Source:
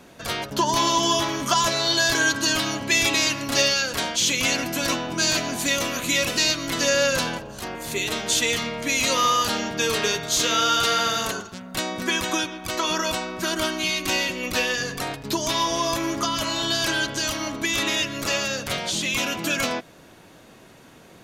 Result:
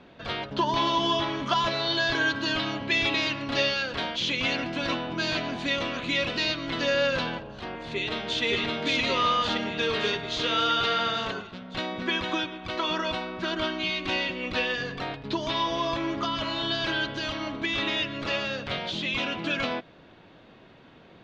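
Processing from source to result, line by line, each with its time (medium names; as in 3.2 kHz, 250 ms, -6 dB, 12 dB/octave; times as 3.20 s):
7.88–8.43 s: echo throw 570 ms, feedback 65%, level -0.5 dB
whole clip: Chebyshev low-pass 3.7 kHz, order 3; trim -3 dB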